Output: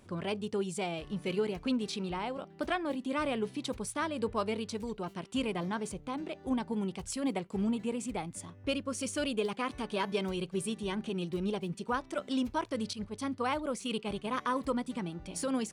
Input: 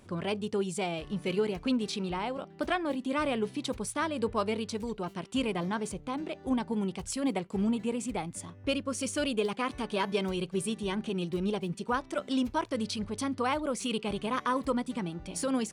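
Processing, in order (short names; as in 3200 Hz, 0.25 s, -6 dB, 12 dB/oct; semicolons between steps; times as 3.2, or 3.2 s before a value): 12.93–14.32 expander -31 dBFS; gain -2.5 dB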